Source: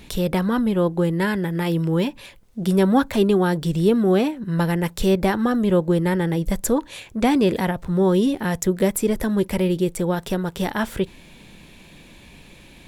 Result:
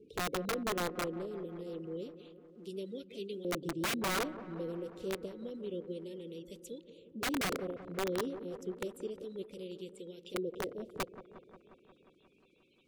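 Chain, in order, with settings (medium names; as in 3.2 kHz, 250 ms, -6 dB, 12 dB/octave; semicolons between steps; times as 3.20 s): coarse spectral quantiser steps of 30 dB; elliptic band-stop 460–2900 Hz, stop band 40 dB; LFO band-pass saw up 0.29 Hz 480–1700 Hz; integer overflow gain 26 dB; on a send: feedback echo behind a low-pass 178 ms, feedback 71%, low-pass 1.3 kHz, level -13.5 dB; on the sum: trim -2.5 dB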